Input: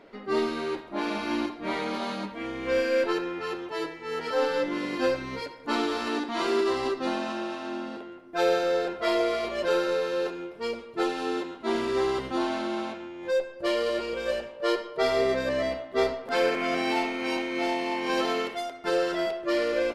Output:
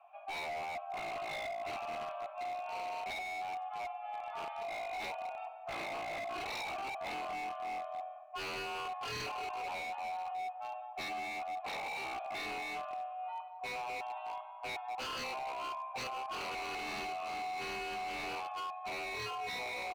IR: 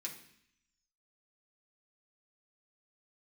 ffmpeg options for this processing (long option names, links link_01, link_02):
-filter_complex "[0:a]highpass=frequency=160:width_type=q:width=0.5412,highpass=frequency=160:width_type=q:width=1.307,lowpass=frequency=3100:width_type=q:width=0.5176,lowpass=frequency=3100:width_type=q:width=0.7071,lowpass=frequency=3100:width_type=q:width=1.932,afreqshift=390,asplit=3[link_01][link_02][link_03];[link_01]bandpass=frequency=730:width_type=q:width=8,volume=0dB[link_04];[link_02]bandpass=frequency=1090:width_type=q:width=8,volume=-6dB[link_05];[link_03]bandpass=frequency=2440:width_type=q:width=8,volume=-9dB[link_06];[link_04][link_05][link_06]amix=inputs=3:normalize=0,asplit=2[link_07][link_08];[link_08]adelay=191,lowpass=frequency=1200:poles=1,volume=-7dB,asplit=2[link_09][link_10];[link_10]adelay=191,lowpass=frequency=1200:poles=1,volume=0.53,asplit=2[link_11][link_12];[link_12]adelay=191,lowpass=frequency=1200:poles=1,volume=0.53,asplit=2[link_13][link_14];[link_14]adelay=191,lowpass=frequency=1200:poles=1,volume=0.53,asplit=2[link_15][link_16];[link_16]adelay=191,lowpass=frequency=1200:poles=1,volume=0.53,asplit=2[link_17][link_18];[link_18]adelay=191,lowpass=frequency=1200:poles=1,volume=0.53[link_19];[link_07][link_09][link_11][link_13][link_15][link_17][link_19]amix=inputs=7:normalize=0,asplit=2[link_20][link_21];[1:a]atrim=start_sample=2205,lowshelf=frequency=190:gain=10[link_22];[link_21][link_22]afir=irnorm=-1:irlink=0,volume=-9.5dB[link_23];[link_20][link_23]amix=inputs=2:normalize=0,aeval=exprs='0.0237*(abs(mod(val(0)/0.0237+3,4)-2)-1)':channel_layout=same,volume=-2.5dB"